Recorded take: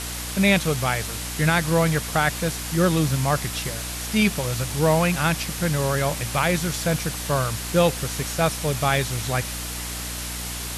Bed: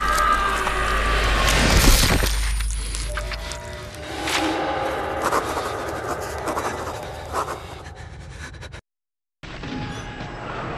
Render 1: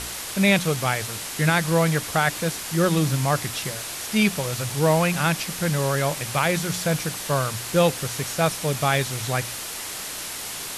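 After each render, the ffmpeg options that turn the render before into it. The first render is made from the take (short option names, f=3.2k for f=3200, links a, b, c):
-af "bandreject=f=60:t=h:w=4,bandreject=f=120:t=h:w=4,bandreject=f=180:t=h:w=4,bandreject=f=240:t=h:w=4,bandreject=f=300:t=h:w=4"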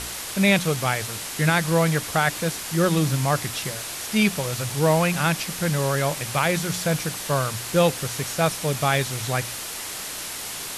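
-af anull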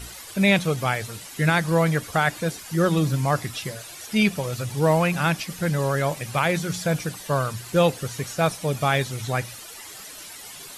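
-af "afftdn=nr=12:nf=-33"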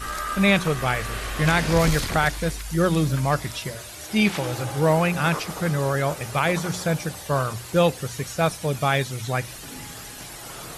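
-filter_complex "[1:a]volume=-11dB[a];[0:a][a]amix=inputs=2:normalize=0"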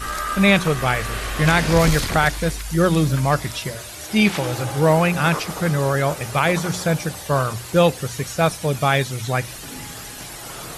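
-af "volume=3.5dB"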